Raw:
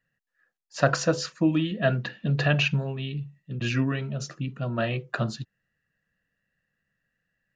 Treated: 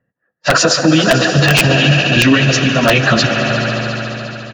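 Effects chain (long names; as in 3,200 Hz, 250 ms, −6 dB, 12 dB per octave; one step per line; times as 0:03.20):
high-pass filter 190 Hz 6 dB per octave
high-shelf EQ 2,400 Hz +12 dB
echo with shifted repeats 281 ms, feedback 37%, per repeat +95 Hz, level −20 dB
low-pass that shuts in the quiet parts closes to 610 Hz, open at −22 dBFS
on a send: echo that builds up and dies away 118 ms, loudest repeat 5, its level −17 dB
on the sum: time stretch by phase vocoder 0.6×
speech leveller within 4 dB 2 s
wrap-around overflow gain 16 dB
high-shelf EQ 6,300 Hz −11.5 dB
boost into a limiter +23.5 dB
level −1 dB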